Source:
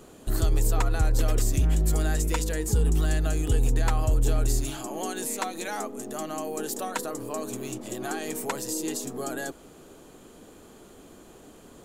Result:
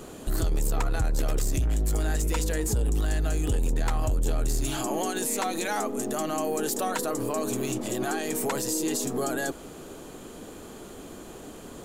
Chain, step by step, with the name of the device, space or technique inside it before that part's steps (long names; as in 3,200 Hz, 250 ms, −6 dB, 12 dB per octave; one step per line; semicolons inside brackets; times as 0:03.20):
soft clipper into limiter (soft clipping −20 dBFS, distortion −15 dB; brickwall limiter −27 dBFS, peak gain reduction 6.5 dB)
level +7 dB